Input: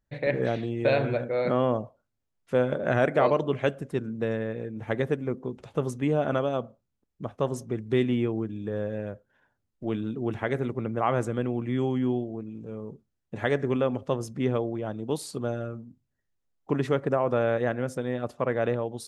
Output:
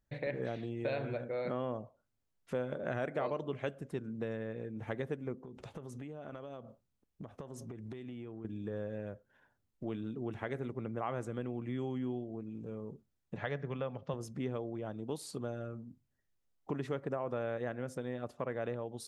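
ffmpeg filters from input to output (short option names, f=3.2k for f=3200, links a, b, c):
-filter_complex "[0:a]asettb=1/sr,asplit=3[a][b][c];[a]atrim=end=5.364[d];[b]atrim=start=5.36:end=8.45,asetpts=PTS-STARTPTS,afade=t=in:d=0.004:c=qsin,afade=t=out:st=3.086:d=0.004:c=qsin,acompressor=threshold=-38dB:ratio=16:attack=3.2:release=140:knee=1:detection=peak[e];[c]atrim=start=8.446[f];[d][e]acrossfade=d=0.004:c1=hsin:c2=qsin[g];[g][f]acrossfade=d=0.004:c1=qsin:c2=hsin,asettb=1/sr,asplit=3[h][i][j];[h]atrim=end=13.364[k];[i]atrim=start=13.36:end=14.14,asetpts=PTS-STARTPTS,afade=t=in:d=0.004:c=qsin,afade=t=out:st=0.776:d=0.004:c=qsin,highpass=100,equalizer=f=160:t=q:w=4:g=10,equalizer=f=240:t=q:w=4:g=-8,equalizer=f=360:t=q:w=4:g=-8,lowpass=f=5.4k:w=0.5412,lowpass=f=5.4k:w=1.3066[l];[j]atrim=start=14.136[m];[k][l]acrossfade=d=0.004:c1=hsin:c2=qsin[n];[n][m]acrossfade=d=0.004:c1=qsin:c2=hsin,acompressor=threshold=-40dB:ratio=2,volume=-1.5dB"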